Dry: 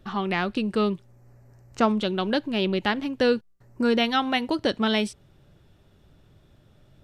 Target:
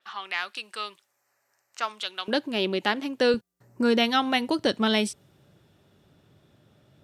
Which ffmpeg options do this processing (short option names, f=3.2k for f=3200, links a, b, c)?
-af "asetnsamples=n=441:p=0,asendcmd='2.28 highpass f 260;3.34 highpass f 120',highpass=1.3k,adynamicequalizer=threshold=0.00794:dfrequency=5200:dqfactor=0.7:tfrequency=5200:tqfactor=0.7:attack=5:release=100:ratio=0.375:range=3.5:mode=boostabove:tftype=highshelf"